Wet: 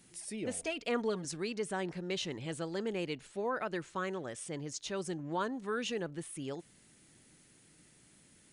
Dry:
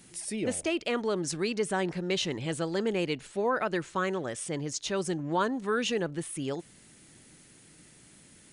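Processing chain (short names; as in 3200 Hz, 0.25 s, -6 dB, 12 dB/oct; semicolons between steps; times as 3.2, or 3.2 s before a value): 0.54–1.25 comb 4.3 ms, depth 73%; gain -7 dB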